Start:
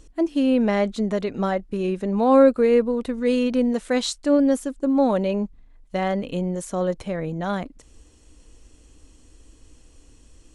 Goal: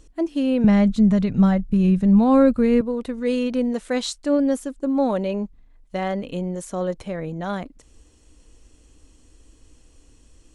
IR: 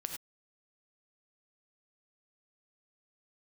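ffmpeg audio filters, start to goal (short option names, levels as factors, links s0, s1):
-filter_complex "[0:a]asettb=1/sr,asplit=3[s0][s1][s2];[s0]atrim=end=0.644[s3];[s1]atrim=start=0.64:end=2.81,asetpts=PTS-STARTPTS,afade=t=in:d=0.004:c=qsin,afade=t=out:st=2.166:d=0.004:c=qsin,lowshelf=f=240:t=q:w=1.5:g=14[s4];[s2]atrim=start=2.806[s5];[s3][s4]acrossfade=d=0.004:c1=hsin:c2=qsin[s6];[s6][s5]acrossfade=d=0.004:c1=qsin:c2=hsin,volume=0.841"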